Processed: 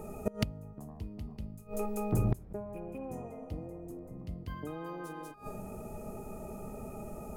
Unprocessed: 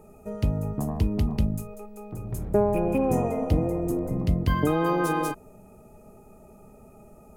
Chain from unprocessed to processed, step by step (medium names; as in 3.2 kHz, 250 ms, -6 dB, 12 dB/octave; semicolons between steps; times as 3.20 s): de-hum 137.2 Hz, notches 39; inverted gate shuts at -24 dBFS, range -25 dB; trim +7.5 dB